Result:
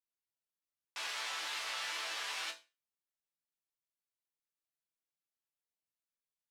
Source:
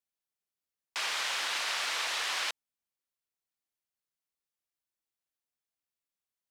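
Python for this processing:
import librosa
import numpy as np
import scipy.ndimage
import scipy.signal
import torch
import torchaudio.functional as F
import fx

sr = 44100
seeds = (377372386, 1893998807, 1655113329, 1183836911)

y = fx.wow_flutter(x, sr, seeds[0], rate_hz=2.1, depth_cents=41.0)
y = fx.resonator_bank(y, sr, root=45, chord='sus4', decay_s=0.28)
y = y * librosa.db_to_amplitude(6.0)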